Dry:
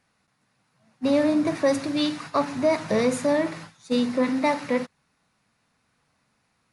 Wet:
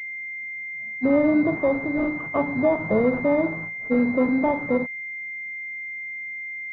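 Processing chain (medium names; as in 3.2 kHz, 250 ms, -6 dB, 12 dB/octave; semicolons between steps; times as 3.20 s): 1.59–2.15 s: bass shelf 360 Hz -6 dB; in parallel at -2.5 dB: peak limiter -22.5 dBFS, peak gain reduction 12 dB; on the sum: class-D stage that switches slowly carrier 2.1 kHz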